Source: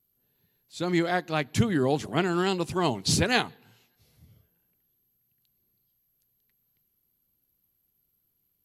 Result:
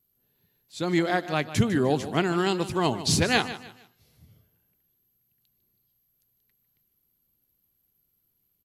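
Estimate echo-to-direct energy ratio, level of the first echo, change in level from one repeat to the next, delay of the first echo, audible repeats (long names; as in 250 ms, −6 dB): −13.5 dB, −14.0 dB, −10.0 dB, 151 ms, 3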